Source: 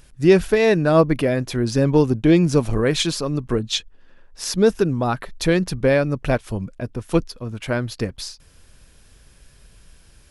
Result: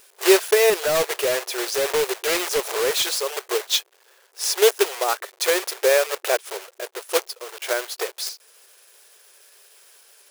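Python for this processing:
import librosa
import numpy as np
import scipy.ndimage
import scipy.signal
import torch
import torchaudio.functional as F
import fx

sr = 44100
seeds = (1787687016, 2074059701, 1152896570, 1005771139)

y = fx.block_float(x, sr, bits=3)
y = fx.brickwall_highpass(y, sr, low_hz=360.0)
y = fx.high_shelf(y, sr, hz=5600.0, db=5.5)
y = fx.clip_hard(y, sr, threshold_db=-17.0, at=(0.7, 3.17))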